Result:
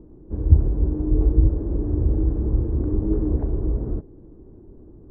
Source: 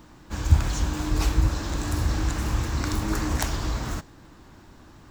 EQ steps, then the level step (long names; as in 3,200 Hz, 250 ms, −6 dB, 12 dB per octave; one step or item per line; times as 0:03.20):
low-pass with resonance 410 Hz, resonance Q 3.7
high-frequency loss of the air 320 metres
low-shelf EQ 75 Hz +9.5 dB
−1.0 dB